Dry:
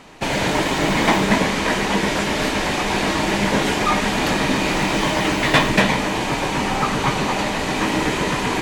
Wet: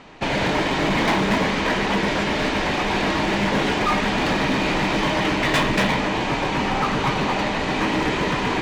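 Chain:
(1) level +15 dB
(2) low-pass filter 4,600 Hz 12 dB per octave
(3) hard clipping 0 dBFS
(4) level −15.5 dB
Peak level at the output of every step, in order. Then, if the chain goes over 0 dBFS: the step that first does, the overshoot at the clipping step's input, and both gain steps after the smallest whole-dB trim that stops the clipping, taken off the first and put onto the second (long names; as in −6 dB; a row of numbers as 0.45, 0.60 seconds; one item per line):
+8.5, +9.0, 0.0, −15.5 dBFS
step 1, 9.0 dB
step 1 +6 dB, step 4 −6.5 dB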